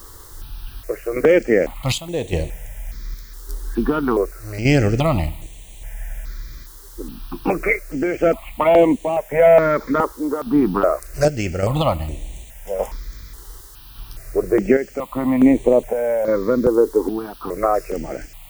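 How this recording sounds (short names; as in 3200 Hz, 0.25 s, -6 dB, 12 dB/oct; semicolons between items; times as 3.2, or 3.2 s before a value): chopped level 0.86 Hz, depth 60%, duty 70%; a quantiser's noise floor 8-bit, dither triangular; notches that jump at a steady rate 2.4 Hz 660–5000 Hz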